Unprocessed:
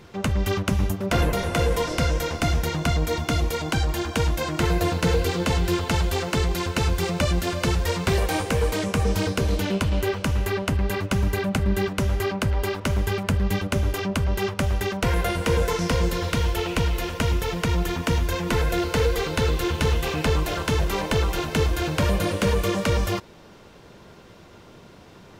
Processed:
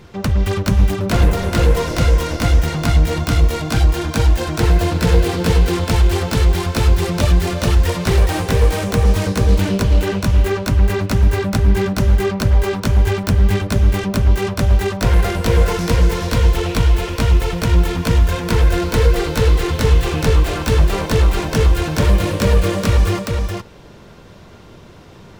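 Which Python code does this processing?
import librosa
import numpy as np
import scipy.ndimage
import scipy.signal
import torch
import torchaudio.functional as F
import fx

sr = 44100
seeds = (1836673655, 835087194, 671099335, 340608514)

y = fx.self_delay(x, sr, depth_ms=0.13)
y = fx.low_shelf(y, sr, hz=130.0, db=6.5)
y = y + 10.0 ** (-4.0 / 20.0) * np.pad(y, (int(417 * sr / 1000.0), 0))[:len(y)]
y = F.gain(torch.from_numpy(y), 3.0).numpy()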